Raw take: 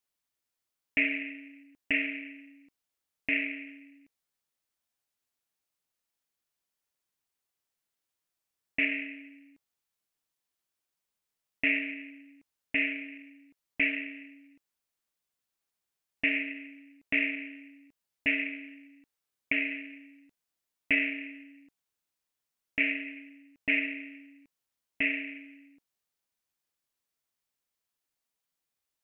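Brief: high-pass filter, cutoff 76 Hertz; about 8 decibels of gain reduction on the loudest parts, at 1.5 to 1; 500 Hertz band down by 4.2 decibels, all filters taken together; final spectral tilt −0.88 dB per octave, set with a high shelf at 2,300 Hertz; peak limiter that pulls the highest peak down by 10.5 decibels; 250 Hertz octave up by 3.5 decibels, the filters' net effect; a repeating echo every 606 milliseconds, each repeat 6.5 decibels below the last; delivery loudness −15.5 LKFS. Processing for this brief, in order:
high-pass filter 76 Hz
parametric band 250 Hz +6 dB
parametric band 500 Hz −7.5 dB
high-shelf EQ 2,300 Hz +4.5 dB
downward compressor 1.5 to 1, threshold −43 dBFS
brickwall limiter −27.5 dBFS
repeating echo 606 ms, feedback 47%, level −6.5 dB
level +26 dB

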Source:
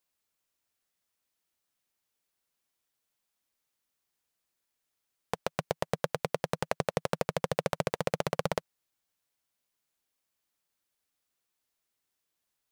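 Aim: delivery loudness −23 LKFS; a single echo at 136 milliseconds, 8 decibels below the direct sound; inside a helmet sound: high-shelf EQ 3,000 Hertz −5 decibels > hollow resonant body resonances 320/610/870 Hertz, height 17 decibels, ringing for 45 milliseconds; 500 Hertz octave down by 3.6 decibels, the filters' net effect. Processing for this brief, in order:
parametric band 500 Hz −4 dB
high-shelf EQ 3,000 Hz −5 dB
single-tap delay 136 ms −8 dB
hollow resonant body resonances 320/610/870 Hz, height 17 dB, ringing for 45 ms
level +3.5 dB

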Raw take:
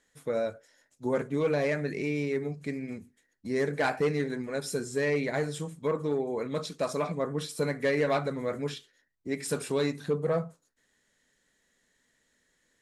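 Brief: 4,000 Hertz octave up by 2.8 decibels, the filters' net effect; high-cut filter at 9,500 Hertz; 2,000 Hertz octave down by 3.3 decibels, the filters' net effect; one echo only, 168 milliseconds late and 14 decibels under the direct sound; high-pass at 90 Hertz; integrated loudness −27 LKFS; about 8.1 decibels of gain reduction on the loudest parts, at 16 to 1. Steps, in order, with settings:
high-pass filter 90 Hz
low-pass filter 9,500 Hz
parametric band 2,000 Hz −5 dB
parametric band 4,000 Hz +4.5 dB
downward compressor 16 to 1, threshold −31 dBFS
single-tap delay 168 ms −14 dB
level +10 dB

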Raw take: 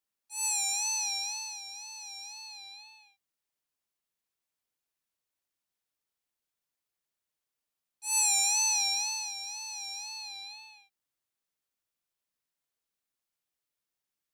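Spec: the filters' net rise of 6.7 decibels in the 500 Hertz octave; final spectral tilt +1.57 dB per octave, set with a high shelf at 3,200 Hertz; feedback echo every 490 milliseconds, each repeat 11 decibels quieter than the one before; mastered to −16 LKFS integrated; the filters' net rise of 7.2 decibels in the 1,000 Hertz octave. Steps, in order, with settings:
parametric band 500 Hz +7.5 dB
parametric band 1,000 Hz +5.5 dB
high-shelf EQ 3,200 Hz +8 dB
repeating echo 490 ms, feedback 28%, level −11 dB
level +6.5 dB

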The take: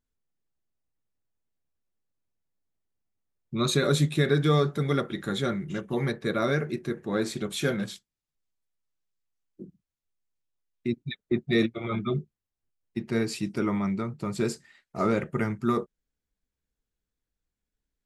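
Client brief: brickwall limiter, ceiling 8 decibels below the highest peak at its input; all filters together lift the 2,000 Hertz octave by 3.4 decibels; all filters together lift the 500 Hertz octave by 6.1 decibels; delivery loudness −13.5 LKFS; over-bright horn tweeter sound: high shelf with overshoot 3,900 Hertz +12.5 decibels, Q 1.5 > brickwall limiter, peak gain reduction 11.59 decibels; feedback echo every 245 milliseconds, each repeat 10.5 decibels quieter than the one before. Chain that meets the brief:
parametric band 500 Hz +7.5 dB
parametric band 2,000 Hz +6.5 dB
brickwall limiter −13 dBFS
high shelf with overshoot 3,900 Hz +12.5 dB, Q 1.5
repeating echo 245 ms, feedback 30%, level −10.5 dB
level +14.5 dB
brickwall limiter −2.5 dBFS

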